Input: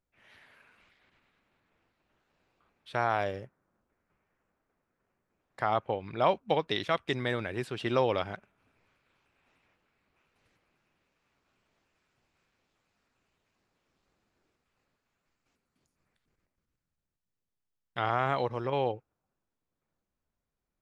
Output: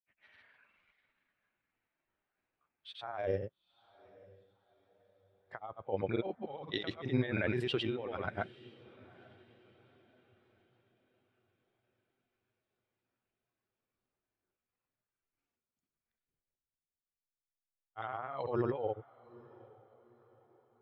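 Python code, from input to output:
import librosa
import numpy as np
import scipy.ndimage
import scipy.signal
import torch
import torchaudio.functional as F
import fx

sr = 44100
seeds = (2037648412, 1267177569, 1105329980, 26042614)

y = fx.low_shelf(x, sr, hz=480.0, db=-4.5)
y = fx.over_compress(y, sr, threshold_db=-38.0, ratio=-1.0)
y = fx.granulator(y, sr, seeds[0], grain_ms=100.0, per_s=20.0, spray_ms=100.0, spread_st=0)
y = fx.echo_diffused(y, sr, ms=876, feedback_pct=54, wet_db=-14.0)
y = fx.spectral_expand(y, sr, expansion=1.5)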